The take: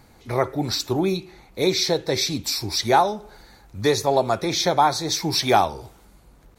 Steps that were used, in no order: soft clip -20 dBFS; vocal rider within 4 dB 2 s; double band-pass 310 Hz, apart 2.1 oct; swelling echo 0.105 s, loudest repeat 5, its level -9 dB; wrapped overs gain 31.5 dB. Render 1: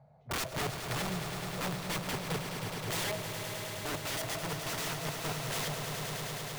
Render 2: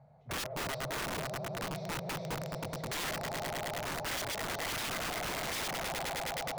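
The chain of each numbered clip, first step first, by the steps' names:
double band-pass > soft clip > wrapped overs > swelling echo > vocal rider; soft clip > swelling echo > vocal rider > double band-pass > wrapped overs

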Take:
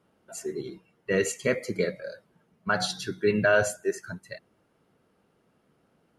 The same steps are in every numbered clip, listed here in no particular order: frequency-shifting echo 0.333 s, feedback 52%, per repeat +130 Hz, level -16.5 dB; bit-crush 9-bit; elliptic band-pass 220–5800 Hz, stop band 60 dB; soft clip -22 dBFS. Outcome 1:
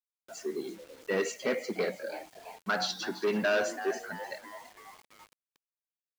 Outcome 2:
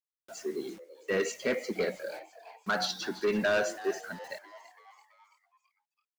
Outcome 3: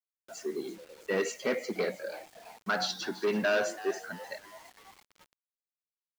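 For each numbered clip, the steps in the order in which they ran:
frequency-shifting echo > soft clip > elliptic band-pass > bit-crush; elliptic band-pass > bit-crush > soft clip > frequency-shifting echo; soft clip > elliptic band-pass > frequency-shifting echo > bit-crush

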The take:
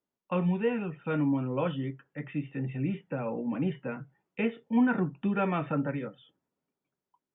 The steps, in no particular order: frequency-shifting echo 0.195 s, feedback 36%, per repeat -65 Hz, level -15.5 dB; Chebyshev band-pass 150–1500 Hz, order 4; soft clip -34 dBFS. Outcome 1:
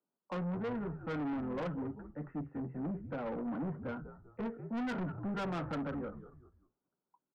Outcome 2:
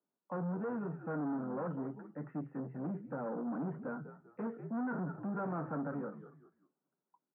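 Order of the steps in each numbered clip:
Chebyshev band-pass > frequency-shifting echo > soft clip; frequency-shifting echo > soft clip > Chebyshev band-pass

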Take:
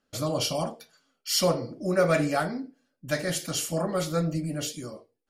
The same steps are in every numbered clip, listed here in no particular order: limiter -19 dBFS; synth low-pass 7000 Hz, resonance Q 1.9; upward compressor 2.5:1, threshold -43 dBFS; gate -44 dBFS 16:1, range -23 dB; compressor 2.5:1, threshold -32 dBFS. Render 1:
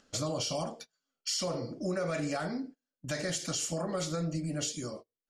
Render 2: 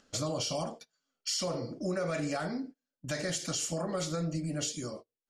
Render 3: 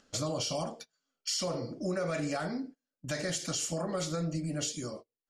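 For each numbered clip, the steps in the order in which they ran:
synth low-pass > limiter > gate > upward compressor > compressor; synth low-pass > limiter > compressor > gate > upward compressor; gate > synth low-pass > limiter > compressor > upward compressor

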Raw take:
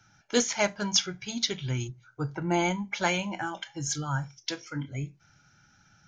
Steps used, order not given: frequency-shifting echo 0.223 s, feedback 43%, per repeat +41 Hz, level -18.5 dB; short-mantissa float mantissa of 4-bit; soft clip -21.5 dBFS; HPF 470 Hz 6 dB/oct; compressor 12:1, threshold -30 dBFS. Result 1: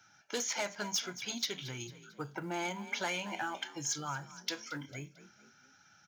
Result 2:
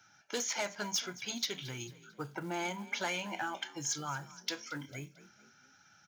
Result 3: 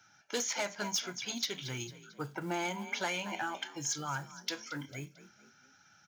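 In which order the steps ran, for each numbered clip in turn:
soft clip > frequency-shifting echo > compressor > HPF > short-mantissa float; soft clip > compressor > frequency-shifting echo > short-mantissa float > HPF; frequency-shifting echo > soft clip > short-mantissa float > HPF > compressor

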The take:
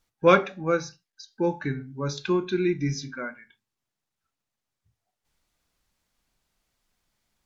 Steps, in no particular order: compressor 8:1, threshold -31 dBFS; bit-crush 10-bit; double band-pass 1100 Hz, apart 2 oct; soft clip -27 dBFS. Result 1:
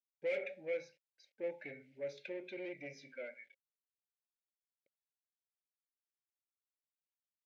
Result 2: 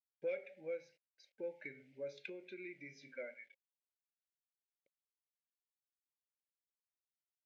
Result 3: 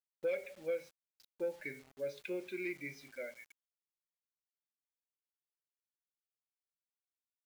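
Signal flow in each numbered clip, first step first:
bit-crush > soft clip > double band-pass > compressor; compressor > bit-crush > double band-pass > soft clip; double band-pass > compressor > bit-crush > soft clip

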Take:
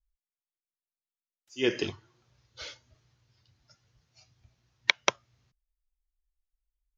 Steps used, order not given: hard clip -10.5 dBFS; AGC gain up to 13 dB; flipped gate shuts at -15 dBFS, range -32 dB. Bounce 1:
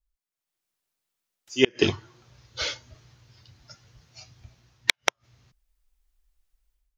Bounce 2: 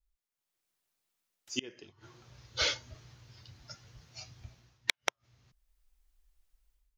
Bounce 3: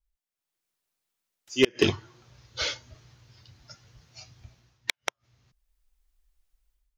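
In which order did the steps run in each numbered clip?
flipped gate > hard clip > AGC; AGC > flipped gate > hard clip; flipped gate > AGC > hard clip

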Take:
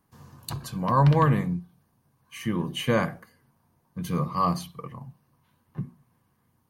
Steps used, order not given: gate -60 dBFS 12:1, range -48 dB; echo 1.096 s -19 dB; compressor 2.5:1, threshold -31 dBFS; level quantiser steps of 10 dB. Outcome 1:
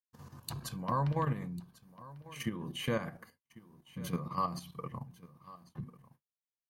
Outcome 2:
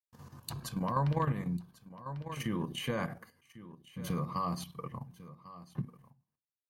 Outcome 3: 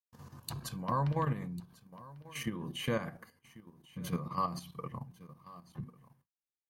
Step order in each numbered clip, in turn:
compressor > level quantiser > echo > gate; gate > level quantiser > echo > compressor; compressor > echo > gate > level quantiser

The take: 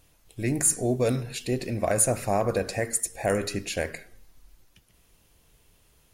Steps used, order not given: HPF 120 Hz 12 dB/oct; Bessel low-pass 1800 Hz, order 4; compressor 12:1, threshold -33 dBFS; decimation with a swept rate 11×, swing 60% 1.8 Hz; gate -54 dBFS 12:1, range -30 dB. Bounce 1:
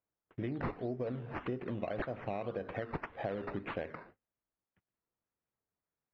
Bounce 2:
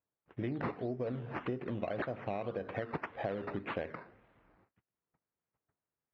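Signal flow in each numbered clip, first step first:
compressor > HPF > gate > decimation with a swept rate > Bessel low-pass; decimation with a swept rate > Bessel low-pass > gate > HPF > compressor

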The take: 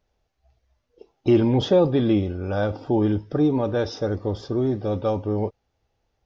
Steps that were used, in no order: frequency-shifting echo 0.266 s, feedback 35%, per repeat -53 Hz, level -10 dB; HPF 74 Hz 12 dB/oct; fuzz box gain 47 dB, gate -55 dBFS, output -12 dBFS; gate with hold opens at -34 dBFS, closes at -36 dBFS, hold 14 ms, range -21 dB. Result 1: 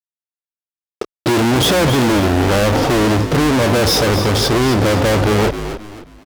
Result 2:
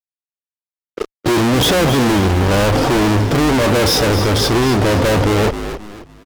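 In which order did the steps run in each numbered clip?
gate with hold > fuzz box > HPF > frequency-shifting echo; HPF > fuzz box > frequency-shifting echo > gate with hold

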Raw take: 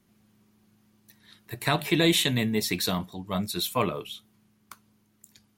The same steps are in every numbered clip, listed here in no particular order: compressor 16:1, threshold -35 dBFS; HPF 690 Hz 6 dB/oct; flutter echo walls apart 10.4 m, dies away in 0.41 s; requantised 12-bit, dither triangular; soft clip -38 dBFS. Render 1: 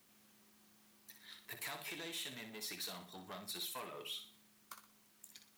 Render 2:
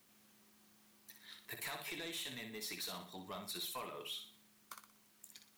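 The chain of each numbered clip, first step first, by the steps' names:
compressor > soft clip > HPF > requantised > flutter echo; compressor > HPF > requantised > flutter echo > soft clip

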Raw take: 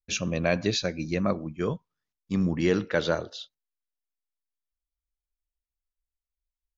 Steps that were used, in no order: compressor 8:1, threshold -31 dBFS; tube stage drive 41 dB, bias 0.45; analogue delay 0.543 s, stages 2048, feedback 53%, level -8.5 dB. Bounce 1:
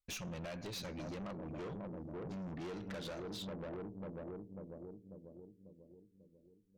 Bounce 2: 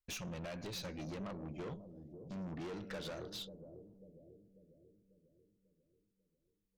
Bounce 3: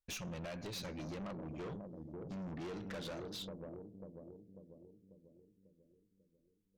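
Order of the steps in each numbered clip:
analogue delay > compressor > tube stage; compressor > tube stage > analogue delay; compressor > analogue delay > tube stage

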